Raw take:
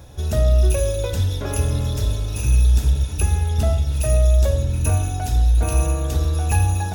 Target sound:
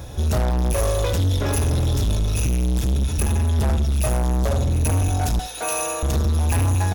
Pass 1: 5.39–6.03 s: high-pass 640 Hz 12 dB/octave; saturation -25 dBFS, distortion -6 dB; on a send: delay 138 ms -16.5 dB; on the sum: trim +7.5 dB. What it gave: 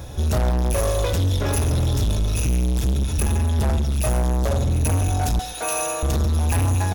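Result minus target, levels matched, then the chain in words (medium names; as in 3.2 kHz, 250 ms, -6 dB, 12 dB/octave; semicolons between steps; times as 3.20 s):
echo 63 ms late
5.39–6.03 s: high-pass 640 Hz 12 dB/octave; saturation -25 dBFS, distortion -6 dB; on a send: delay 75 ms -16.5 dB; on the sum: trim +7.5 dB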